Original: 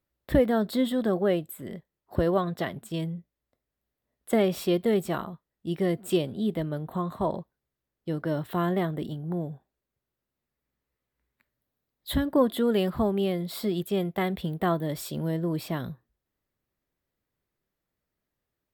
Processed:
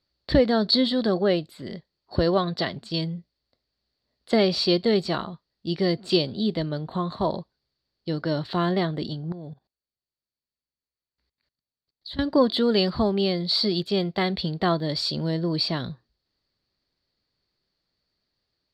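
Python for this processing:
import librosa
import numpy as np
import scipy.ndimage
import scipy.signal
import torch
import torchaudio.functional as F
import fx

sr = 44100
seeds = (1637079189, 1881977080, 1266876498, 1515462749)

y = fx.lowpass_res(x, sr, hz=4500.0, q=14.0)
y = fx.level_steps(y, sr, step_db=20, at=(9.32, 12.19))
y = F.gain(torch.from_numpy(y), 2.5).numpy()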